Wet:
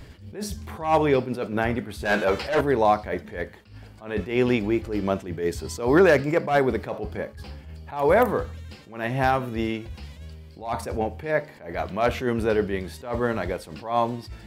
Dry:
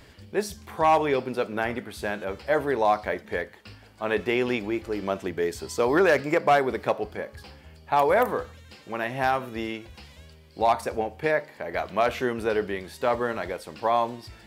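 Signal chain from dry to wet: bass shelf 250 Hz +11 dB; 2.05–2.61 s: overdrive pedal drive 20 dB, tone 7.5 kHz, clips at -10 dBFS; attacks held to a fixed rise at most 130 dB/s; trim +1 dB

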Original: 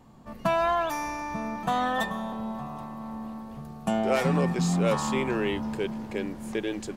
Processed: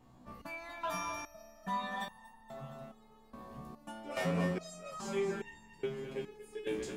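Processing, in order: two-band feedback delay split 300 Hz, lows 480 ms, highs 236 ms, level -8.5 dB; resonator arpeggio 2.4 Hz 62–920 Hz; trim +1 dB

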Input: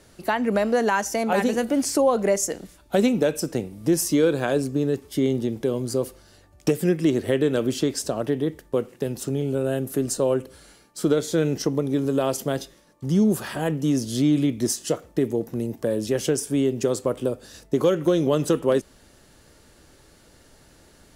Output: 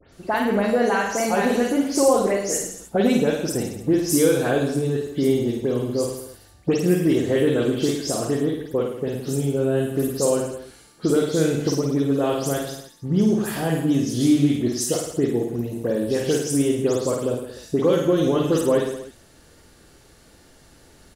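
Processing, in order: delay that grows with frequency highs late, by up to 122 ms; reverse bouncing-ball echo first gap 50 ms, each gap 1.1×, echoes 5

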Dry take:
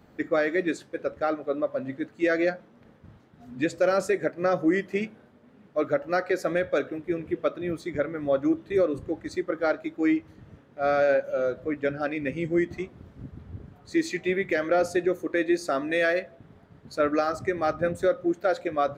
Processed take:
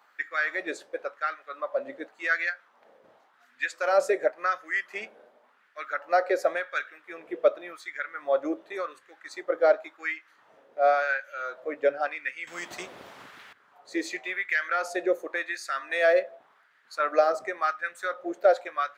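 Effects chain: LFO high-pass sine 0.91 Hz 530–1700 Hz; 12.47–13.53 s: spectrum-flattening compressor 2:1; trim -1.5 dB

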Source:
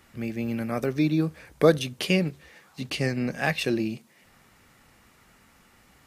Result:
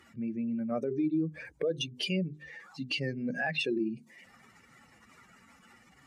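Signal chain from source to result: spectral contrast enhancement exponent 2.1; high-pass 300 Hz 6 dB/octave; peaking EQ 7 kHz +11.5 dB 1.9 oct; hum notches 50/100/150/200/250/300/350/400 Hz; in parallel at -2 dB: compression, threshold -35 dBFS, peak gain reduction 18.5 dB; on the sum: peak limiter -20 dBFS, peak gain reduction 10.5 dB; trim -2.5 dB

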